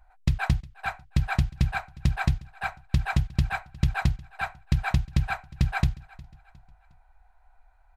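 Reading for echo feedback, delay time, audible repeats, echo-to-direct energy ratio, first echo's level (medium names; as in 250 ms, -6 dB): 40%, 359 ms, 2, -21.5 dB, -22.0 dB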